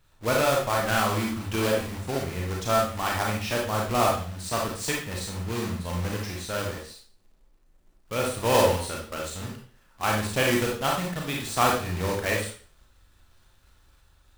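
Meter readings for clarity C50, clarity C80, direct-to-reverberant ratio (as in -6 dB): 3.0 dB, 8.5 dB, -2.0 dB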